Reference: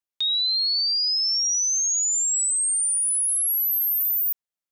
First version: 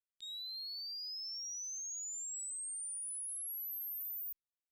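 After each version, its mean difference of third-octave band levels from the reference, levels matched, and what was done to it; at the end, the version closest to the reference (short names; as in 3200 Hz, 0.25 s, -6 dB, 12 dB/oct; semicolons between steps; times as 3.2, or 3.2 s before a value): 1.5 dB: passive tone stack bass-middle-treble 10-0-1; core saturation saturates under 2500 Hz; gain +1 dB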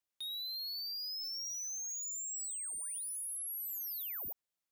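5.5 dB: limiter -31.5 dBFS, peak gain reduction 11.5 dB; soft clip -39.5 dBFS, distortion -13 dB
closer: first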